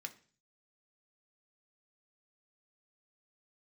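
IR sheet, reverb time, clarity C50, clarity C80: 0.40 s, 16.5 dB, 20.5 dB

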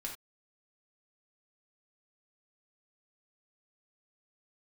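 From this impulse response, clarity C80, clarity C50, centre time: 12.5 dB, 6.5 dB, 23 ms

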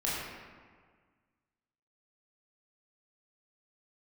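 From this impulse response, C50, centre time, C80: −1.5 dB, 106 ms, 0.5 dB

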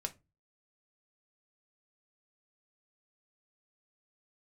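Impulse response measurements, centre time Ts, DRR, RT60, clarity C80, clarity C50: 5 ms, 4.5 dB, 0.25 s, 27.5 dB, 20.0 dB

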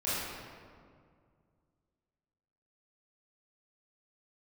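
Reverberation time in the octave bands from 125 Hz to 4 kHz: 2.9, 2.6, 2.2, 2.0, 1.5, 1.1 seconds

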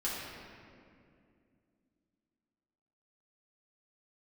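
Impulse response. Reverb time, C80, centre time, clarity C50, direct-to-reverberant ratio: 2.4 s, 0.5 dB, 125 ms, −1.5 dB, −8.0 dB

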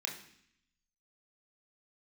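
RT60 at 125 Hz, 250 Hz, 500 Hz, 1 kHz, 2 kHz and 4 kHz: 1.0, 0.95, 0.65, 0.65, 0.80, 0.80 seconds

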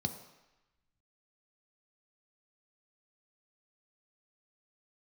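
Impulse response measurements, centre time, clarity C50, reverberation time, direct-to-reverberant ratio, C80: 15 ms, 10.0 dB, 1.0 s, 6.0 dB, 11.5 dB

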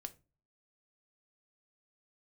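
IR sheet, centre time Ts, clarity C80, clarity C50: 3 ms, 25.5 dB, 19.5 dB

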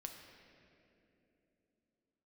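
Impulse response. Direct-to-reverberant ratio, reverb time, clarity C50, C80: 2.5 dB, 3.0 s, 4.5 dB, 5.5 dB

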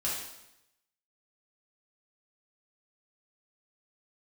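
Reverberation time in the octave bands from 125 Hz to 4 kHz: 0.90, 0.90, 0.85, 0.85, 0.85, 0.85 seconds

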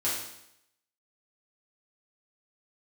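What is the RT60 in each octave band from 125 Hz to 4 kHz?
0.80, 0.80, 0.80, 0.80, 0.80, 0.80 seconds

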